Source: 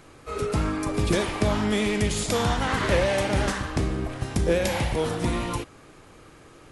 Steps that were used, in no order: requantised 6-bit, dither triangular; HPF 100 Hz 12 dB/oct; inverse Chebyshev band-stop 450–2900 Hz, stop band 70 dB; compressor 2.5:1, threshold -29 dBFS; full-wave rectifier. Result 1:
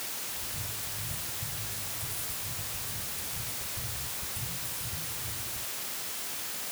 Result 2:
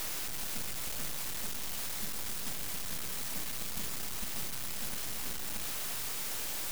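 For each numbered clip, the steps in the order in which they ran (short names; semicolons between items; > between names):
full-wave rectifier > inverse Chebyshev band-stop > requantised > HPF > compressor; compressor > inverse Chebyshev band-stop > requantised > HPF > full-wave rectifier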